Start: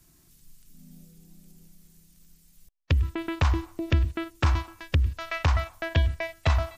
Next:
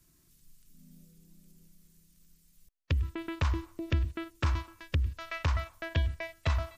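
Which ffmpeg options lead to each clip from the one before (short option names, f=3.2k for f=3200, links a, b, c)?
-af "equalizer=f=770:w=7.6:g=-10.5,volume=-6dB"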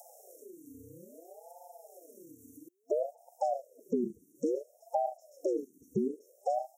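-af "afftfilt=real='re*(1-between(b*sr/4096,210,5800))':imag='im*(1-between(b*sr/4096,210,5800))':win_size=4096:overlap=0.75,acompressor=mode=upward:threshold=-40dB:ratio=2.5,aeval=exprs='val(0)*sin(2*PI*490*n/s+490*0.45/0.59*sin(2*PI*0.59*n/s))':c=same"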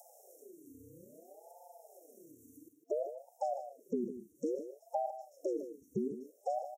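-af "aecho=1:1:155:0.282,volume=-4.5dB"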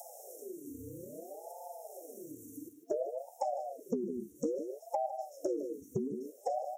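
-af "acompressor=threshold=-41dB:ratio=6,flanger=delay=5.9:depth=8.2:regen=-43:speed=0.81:shape=sinusoidal,volume=13.5dB"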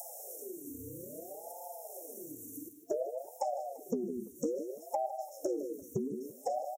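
-af "aecho=1:1:341:0.075,crystalizer=i=1:c=0"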